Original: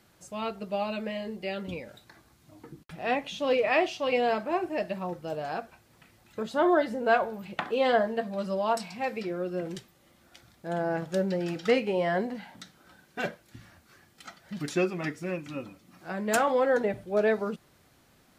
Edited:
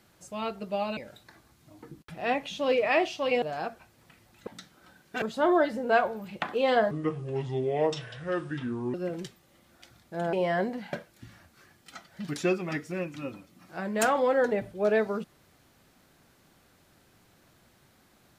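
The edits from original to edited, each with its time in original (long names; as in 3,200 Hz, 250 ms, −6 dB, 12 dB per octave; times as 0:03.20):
0:00.97–0:01.78: remove
0:04.23–0:05.34: remove
0:08.08–0:09.46: play speed 68%
0:10.85–0:11.90: remove
0:12.50–0:13.25: move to 0:06.39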